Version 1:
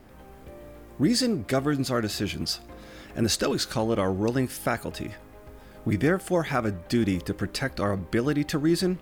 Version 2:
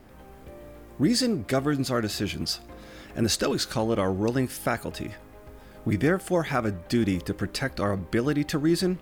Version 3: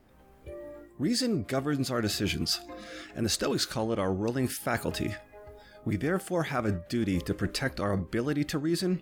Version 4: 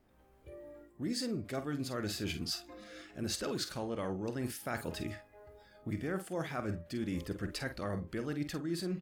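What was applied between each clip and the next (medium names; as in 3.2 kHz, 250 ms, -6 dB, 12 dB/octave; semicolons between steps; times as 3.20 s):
no audible change
spectral noise reduction 14 dB; reverse; compression, threshold -30 dBFS, peak gain reduction 12 dB; reverse; trim +4.5 dB
doubling 48 ms -10 dB; trim -8.5 dB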